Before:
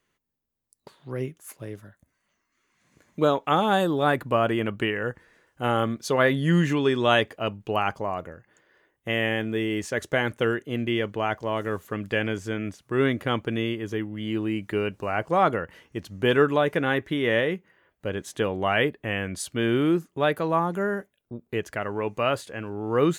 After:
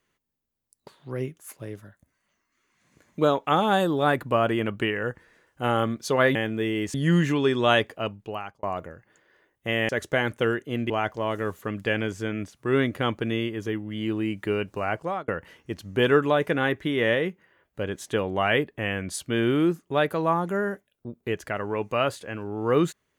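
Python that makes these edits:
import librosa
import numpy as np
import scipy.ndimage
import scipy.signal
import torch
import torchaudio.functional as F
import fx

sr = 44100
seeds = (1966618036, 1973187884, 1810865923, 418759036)

y = fx.edit(x, sr, fx.fade_out_span(start_s=7.35, length_s=0.69),
    fx.move(start_s=9.3, length_s=0.59, to_s=6.35),
    fx.cut(start_s=10.9, length_s=0.26),
    fx.fade_out_span(start_s=15.13, length_s=0.41), tone=tone)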